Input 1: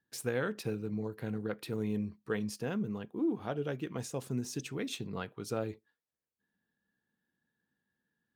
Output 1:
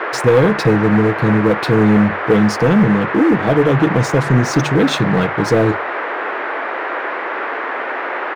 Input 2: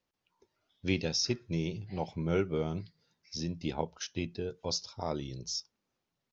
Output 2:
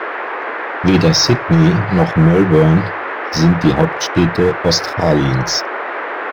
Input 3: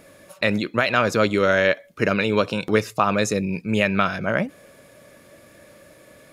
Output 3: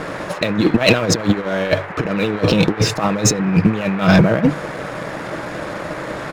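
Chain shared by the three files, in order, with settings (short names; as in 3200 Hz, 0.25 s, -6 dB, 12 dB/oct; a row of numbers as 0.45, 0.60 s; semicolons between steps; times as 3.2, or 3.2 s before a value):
LPF 4200 Hz 12 dB/oct; bell 1600 Hz -11.5 dB 1.8 oct; comb 6.3 ms, depth 39%; de-hum 48.64 Hz, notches 3; negative-ratio compressor -30 dBFS, ratio -0.5; sample leveller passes 2; band noise 330–1900 Hz -40 dBFS; normalise peaks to -1.5 dBFS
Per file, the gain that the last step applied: +17.5, +17.0, +9.0 dB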